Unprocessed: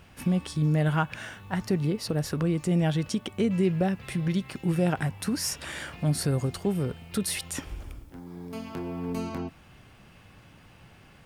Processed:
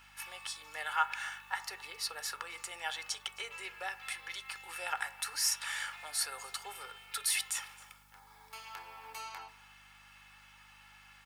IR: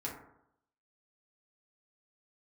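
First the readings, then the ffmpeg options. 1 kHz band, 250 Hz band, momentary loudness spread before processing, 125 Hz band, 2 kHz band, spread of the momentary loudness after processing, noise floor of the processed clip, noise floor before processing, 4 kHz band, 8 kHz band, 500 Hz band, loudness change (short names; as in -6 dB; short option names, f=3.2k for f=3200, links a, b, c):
-2.5 dB, under -40 dB, 13 LU, -40.0 dB, 0.0 dB, 25 LU, -59 dBFS, -54 dBFS, 0.0 dB, 0.0 dB, -22.0 dB, -8.5 dB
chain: -filter_complex "[0:a]highpass=f=930:w=0.5412,highpass=f=930:w=1.3066,aecho=1:1:2.3:0.56,aeval=exprs='val(0)+0.000562*(sin(2*PI*50*n/s)+sin(2*PI*2*50*n/s)/2+sin(2*PI*3*50*n/s)/3+sin(2*PI*4*50*n/s)/4+sin(2*PI*5*50*n/s)/5)':c=same,aecho=1:1:266:0.0708,asplit=2[a][b];[1:a]atrim=start_sample=2205[c];[b][c]afir=irnorm=-1:irlink=0,volume=-11dB[d];[a][d]amix=inputs=2:normalize=0,volume=-2.5dB"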